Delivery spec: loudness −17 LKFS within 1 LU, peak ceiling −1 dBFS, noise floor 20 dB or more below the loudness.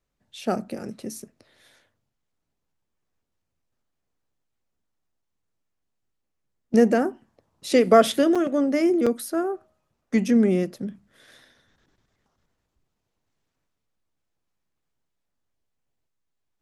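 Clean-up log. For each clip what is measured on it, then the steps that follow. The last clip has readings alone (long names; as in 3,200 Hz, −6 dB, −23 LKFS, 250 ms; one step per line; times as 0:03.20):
number of dropouts 2; longest dropout 5.7 ms; integrated loudness −22.0 LKFS; sample peak −4.0 dBFS; target loudness −17.0 LKFS
→ repair the gap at 0:08.35/0:09.06, 5.7 ms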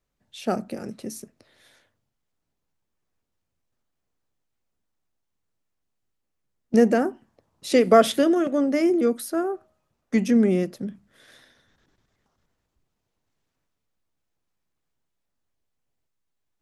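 number of dropouts 0; integrated loudness −21.5 LKFS; sample peak −4.0 dBFS; target loudness −17.0 LKFS
→ level +4.5 dB
brickwall limiter −1 dBFS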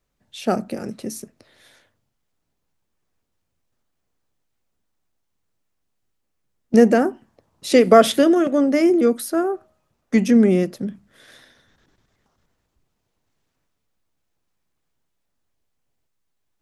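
integrated loudness −17.5 LKFS; sample peak −1.0 dBFS; background noise floor −75 dBFS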